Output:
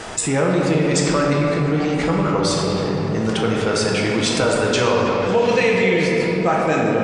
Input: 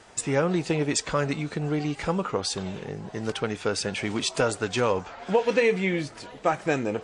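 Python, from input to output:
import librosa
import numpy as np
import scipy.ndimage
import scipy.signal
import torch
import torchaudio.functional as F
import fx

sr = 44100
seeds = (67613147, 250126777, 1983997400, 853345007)

y = fx.peak_eq(x, sr, hz=5200.0, db=6.0, octaves=1.9, at=(4.73, 6.12))
y = fx.room_shoebox(y, sr, seeds[0], volume_m3=200.0, walls='hard', distance_m=0.61)
y = fx.env_flatten(y, sr, amount_pct=50)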